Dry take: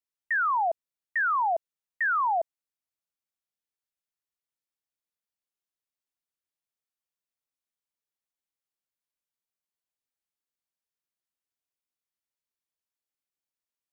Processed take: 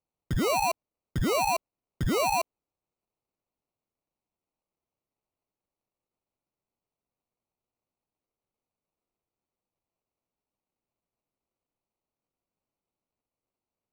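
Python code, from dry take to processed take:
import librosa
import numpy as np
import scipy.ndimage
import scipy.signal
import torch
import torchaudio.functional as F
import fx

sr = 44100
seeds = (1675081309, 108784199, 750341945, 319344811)

y = fx.self_delay(x, sr, depth_ms=0.053)
y = fx.sample_hold(y, sr, seeds[0], rate_hz=1700.0, jitter_pct=0)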